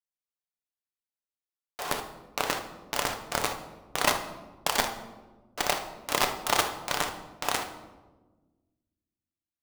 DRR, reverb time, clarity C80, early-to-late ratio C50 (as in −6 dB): 5.0 dB, 1.3 s, 12.0 dB, 9.0 dB